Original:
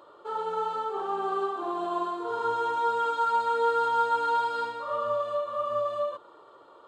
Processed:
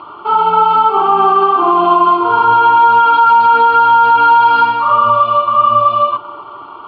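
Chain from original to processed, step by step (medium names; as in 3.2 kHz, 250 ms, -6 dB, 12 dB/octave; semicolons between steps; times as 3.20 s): steep low-pass 4.4 kHz 72 dB/octave; static phaser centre 2.6 kHz, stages 8; on a send at -20 dB: reverberation RT60 2.3 s, pre-delay 110 ms; on the sum: loudness maximiser +25 dB; trim -1 dB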